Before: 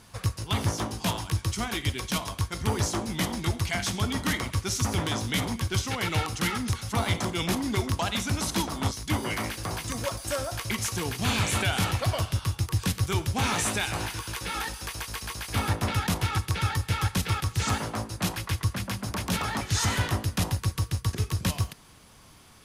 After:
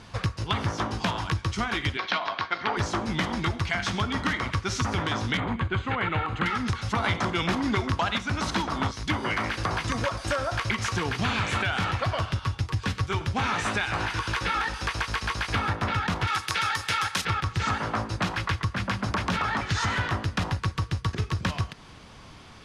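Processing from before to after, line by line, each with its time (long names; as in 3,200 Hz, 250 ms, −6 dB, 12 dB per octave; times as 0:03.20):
0:01.97–0:02.77: loudspeaker in its box 350–4,600 Hz, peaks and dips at 470 Hz −3 dB, 710 Hz +6 dB, 1,500 Hz +3 dB, 2,100 Hz +3 dB, 4,200 Hz +4 dB
0:05.37–0:06.46: moving average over 8 samples
0:07.04–0:08.18: clip gain +7.5 dB
0:12.40–0:13.21: notch comb filter 170 Hz
0:16.27–0:17.25: RIAA equalisation recording
whole clip: low-pass filter 4,600 Hz 12 dB per octave; dynamic equaliser 1,400 Hz, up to +7 dB, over −45 dBFS, Q 1.1; downward compressor, threshold −31 dBFS; level +7 dB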